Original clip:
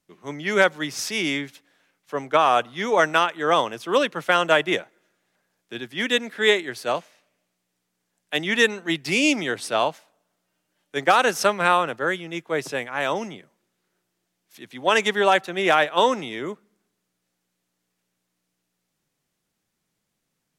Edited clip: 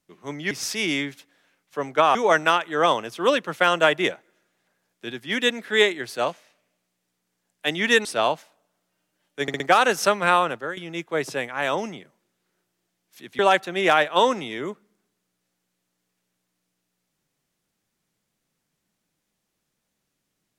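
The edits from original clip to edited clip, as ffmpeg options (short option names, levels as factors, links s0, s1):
-filter_complex "[0:a]asplit=9[s0][s1][s2][s3][s4][s5][s6][s7][s8];[s0]atrim=end=0.512[s9];[s1]atrim=start=0.868:end=2.512[s10];[s2]atrim=start=2.828:end=8.732[s11];[s3]atrim=start=9.608:end=11.042[s12];[s4]atrim=start=10.978:end=11.042[s13];[s5]atrim=start=10.978:end=11.042[s14];[s6]atrim=start=10.978:end=12.15,asetpts=PTS-STARTPTS,afade=t=out:st=0.922:d=0.25:silence=0.188365[s15];[s7]atrim=start=12.15:end=14.772,asetpts=PTS-STARTPTS,afade=t=in:d=0.004:c=hsin:silence=0.188365[s16];[s8]atrim=start=15.198[s17];[s9][s10]acrossfade=d=0.004:c1=hsin:c2=hsin[s18];[s18][s11]acrossfade=d=0.004:c1=hsin:c2=hsin[s19];[s19][s12]acrossfade=d=0.004:c1=hsin:c2=hsin[s20];[s20][s13]acrossfade=d=0.004:c1=hsin:c2=hsin[s21];[s21][s14]acrossfade=d=0.004:c1=hsin:c2=hsin[s22];[s15][s16]concat=n=2:v=0:a=1[s23];[s22][s23]acrossfade=d=0.004:c1=hsin:c2=hsin[s24];[s24][s17]acrossfade=d=0.004:c1=hsin:c2=hsin"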